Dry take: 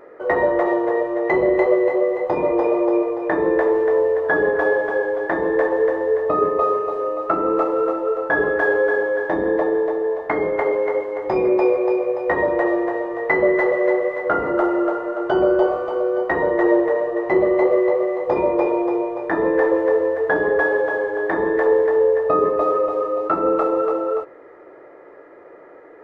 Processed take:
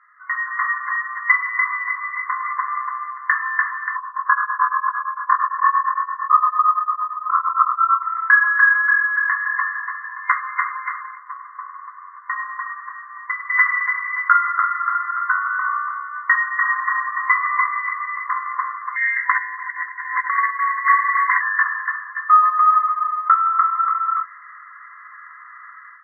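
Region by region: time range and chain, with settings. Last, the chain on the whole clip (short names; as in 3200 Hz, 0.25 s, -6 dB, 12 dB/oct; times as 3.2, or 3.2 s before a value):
3.96–8.03 resonant high shelf 1600 Hz -14 dB, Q 3 + flutter echo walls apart 4.2 m, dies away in 0.67 s + beating tremolo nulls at 8.8 Hz
11.15–13.5 band-pass 630 Hz, Q 2.1 + lo-fi delay 0.1 s, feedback 55%, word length 8-bit, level -10 dB
16.65–17.67 median filter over 9 samples + bell 800 Hz +10 dB 1 oct
18.96–21.41 negative-ratio compressor -22 dBFS, ratio -0.5 + inverted band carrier 2800 Hz
whole clip: FFT band-pass 1000–2100 Hz; AGC gain up to 14 dB; gain -1 dB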